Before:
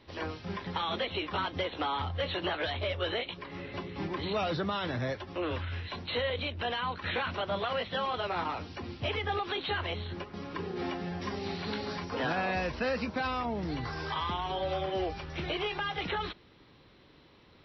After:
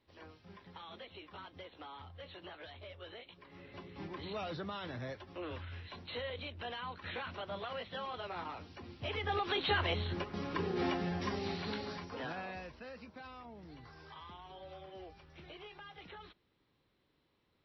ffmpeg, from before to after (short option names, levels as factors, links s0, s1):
-af "volume=1.12,afade=t=in:st=3.22:d=0.8:silence=0.398107,afade=t=in:st=8.96:d=0.74:silence=0.298538,afade=t=out:st=10.92:d=1.2:silence=0.316228,afade=t=out:st=12.12:d=0.68:silence=0.354813"